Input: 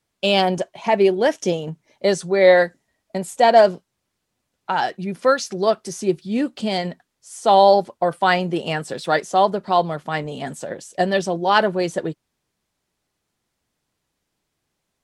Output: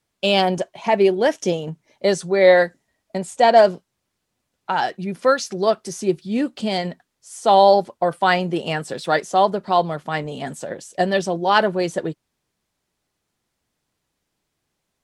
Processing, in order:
0:03.17–0:03.58: low-pass filter 9,600 Hz 24 dB per octave

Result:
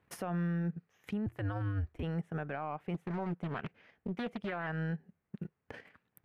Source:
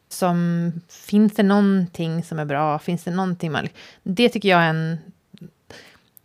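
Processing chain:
high shelf with overshoot 3,200 Hz −13 dB, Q 1.5
transient designer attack +10 dB, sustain −11 dB
0:01.26–0:02.03: frequency shifter −93 Hz
brickwall limiter −19.5 dBFS, peak gain reduction 22.5 dB
0:02.94–0:04.67: highs frequency-modulated by the lows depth 0.81 ms
level −9 dB

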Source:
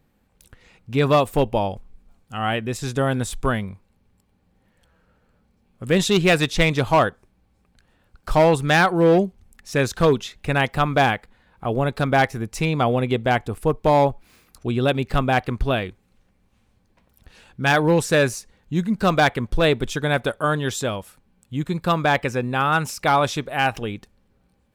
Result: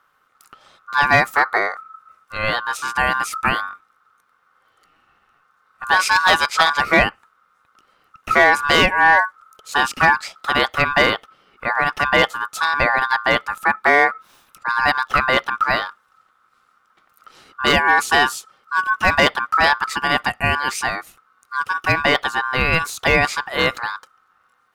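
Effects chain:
ring modulation 1,300 Hz
level +5 dB

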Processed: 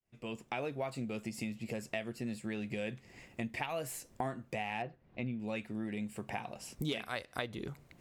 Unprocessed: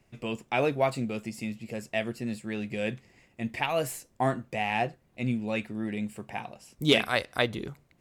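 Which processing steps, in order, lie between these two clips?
fade in at the beginning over 1.13 s
downward compressor 5 to 1, threshold −42 dBFS, peak gain reduction 22.5 dB
0:04.82–0:05.40: high-frequency loss of the air 230 metres
level +5.5 dB

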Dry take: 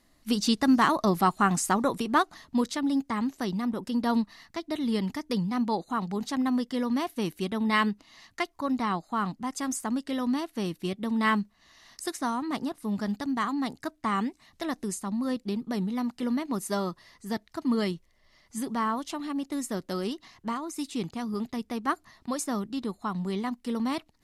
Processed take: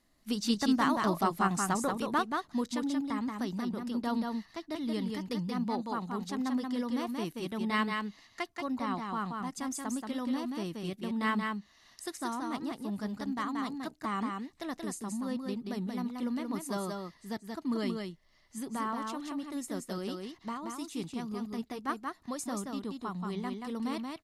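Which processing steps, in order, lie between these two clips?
single-tap delay 180 ms −4 dB
level −6.5 dB

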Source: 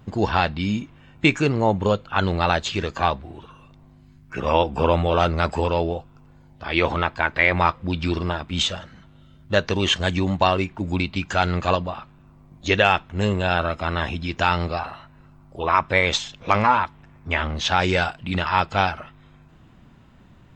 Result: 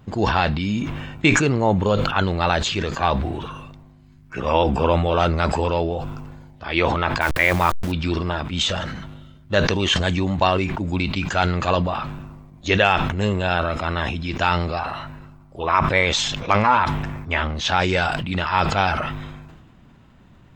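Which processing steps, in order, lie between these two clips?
0:07.21–0:07.92: hold until the input has moved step −30 dBFS
level that may fall only so fast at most 37 dB per second

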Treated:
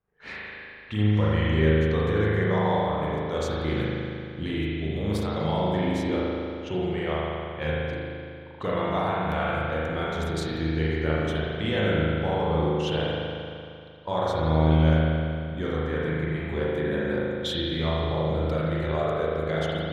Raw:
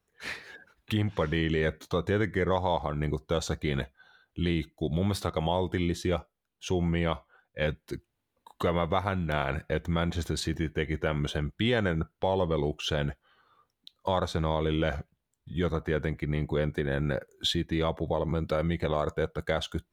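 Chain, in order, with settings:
low-pass that shuts in the quiet parts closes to 1,900 Hz, open at −26.5 dBFS
spring reverb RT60 2.5 s, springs 38 ms, chirp 50 ms, DRR −7 dB
level −4.5 dB

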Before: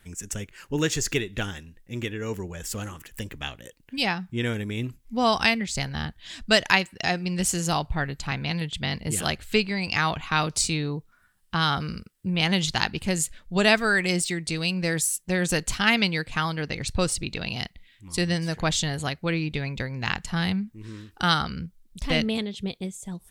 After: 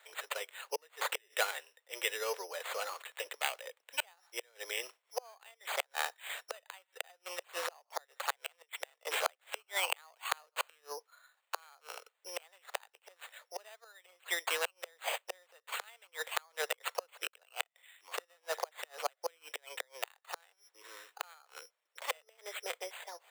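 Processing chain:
low-pass filter 2,900 Hz 6 dB per octave
notch filter 1,600 Hz, Q 17
gate with flip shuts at −17 dBFS, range −35 dB
bad sample-rate conversion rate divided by 8×, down none, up hold
Butterworth high-pass 490 Hz 48 dB per octave
level +2.5 dB

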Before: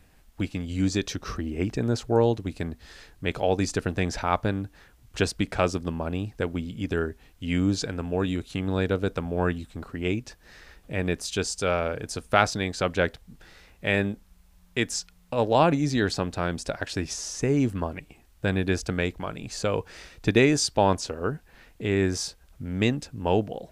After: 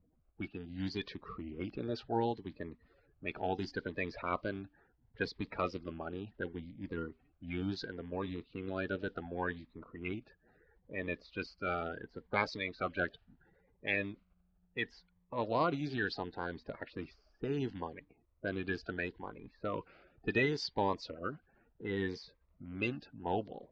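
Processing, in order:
spectral magnitudes quantised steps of 30 dB
elliptic low-pass filter 4,600 Hz, stop band 80 dB
low-pass that shuts in the quiet parts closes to 660 Hz, open at −20 dBFS
low-shelf EQ 250 Hz −9.5 dB
phaser whose notches keep moving one way rising 0.71 Hz
level −6 dB

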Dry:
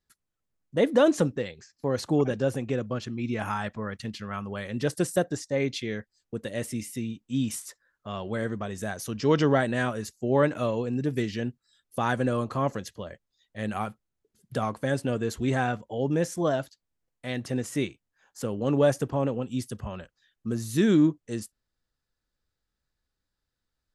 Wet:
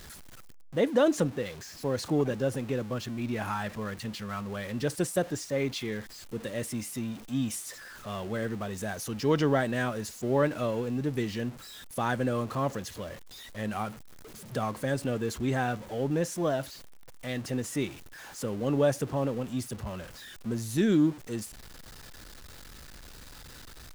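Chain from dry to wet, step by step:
converter with a step at zero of −37 dBFS
level −3.5 dB

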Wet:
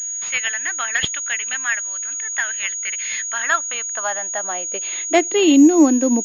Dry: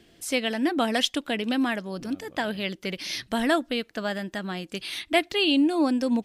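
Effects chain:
high-pass filter sweep 1,700 Hz → 300 Hz, 0:03.21–0:05.53
switching amplifier with a slow clock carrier 6,700 Hz
level +4 dB

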